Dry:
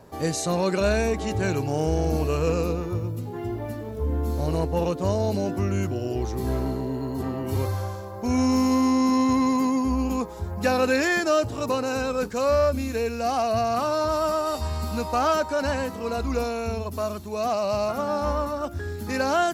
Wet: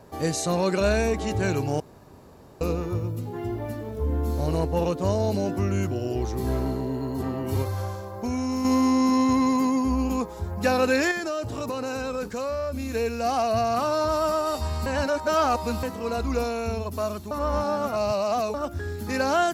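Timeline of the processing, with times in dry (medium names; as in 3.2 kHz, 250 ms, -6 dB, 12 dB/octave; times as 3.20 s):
1.80–2.61 s: room tone
7.62–8.65 s: compression, threshold -24 dBFS
11.11–12.92 s: compression 5:1, threshold -26 dBFS
14.86–15.83 s: reverse
17.31–18.54 s: reverse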